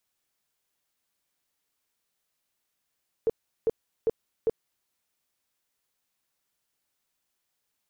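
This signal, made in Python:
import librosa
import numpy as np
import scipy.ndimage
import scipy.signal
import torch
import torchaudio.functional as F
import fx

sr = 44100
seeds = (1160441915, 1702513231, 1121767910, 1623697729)

y = fx.tone_burst(sr, hz=451.0, cycles=12, every_s=0.4, bursts=4, level_db=-19.5)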